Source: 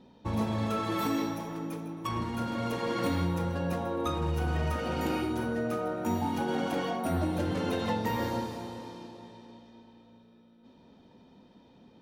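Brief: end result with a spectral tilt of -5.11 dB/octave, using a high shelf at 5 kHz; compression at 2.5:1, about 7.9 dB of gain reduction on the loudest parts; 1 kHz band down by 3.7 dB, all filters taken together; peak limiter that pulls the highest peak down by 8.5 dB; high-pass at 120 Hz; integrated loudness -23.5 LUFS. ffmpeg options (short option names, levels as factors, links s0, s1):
-af "highpass=120,equalizer=f=1000:t=o:g=-5,highshelf=f=5000:g=4,acompressor=threshold=0.0112:ratio=2.5,volume=10.6,alimiter=limit=0.178:level=0:latency=1"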